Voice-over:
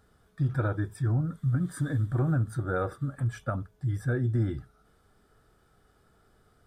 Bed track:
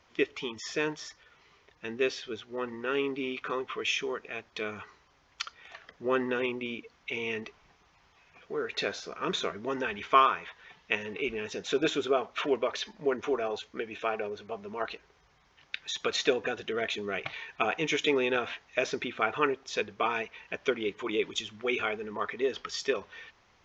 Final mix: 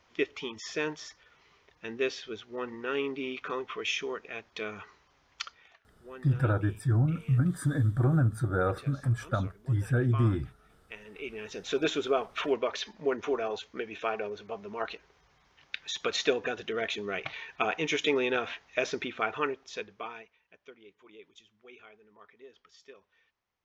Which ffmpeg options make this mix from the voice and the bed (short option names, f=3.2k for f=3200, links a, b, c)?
-filter_complex "[0:a]adelay=5850,volume=1.5dB[a];[1:a]volume=16.5dB,afade=t=out:st=5.46:d=0.33:silence=0.141254,afade=t=in:st=10.88:d=0.98:silence=0.125893,afade=t=out:st=19.02:d=1.36:silence=0.0794328[b];[a][b]amix=inputs=2:normalize=0"